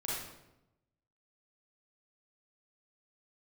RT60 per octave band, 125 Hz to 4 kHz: 1.2, 1.1, 1.0, 0.85, 0.75, 0.65 s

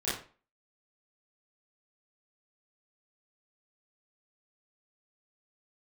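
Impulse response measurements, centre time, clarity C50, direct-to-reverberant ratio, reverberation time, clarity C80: 47 ms, 2.5 dB, -12.0 dB, 0.40 s, 9.5 dB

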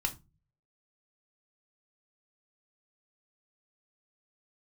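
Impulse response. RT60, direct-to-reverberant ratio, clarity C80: 0.25 s, 3.5 dB, 25.0 dB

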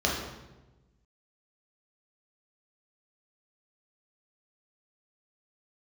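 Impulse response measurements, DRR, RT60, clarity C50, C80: -3.5 dB, 1.1 s, 2.0 dB, 5.0 dB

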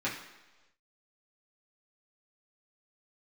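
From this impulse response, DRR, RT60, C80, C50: -8.0 dB, 1.2 s, 9.0 dB, 6.5 dB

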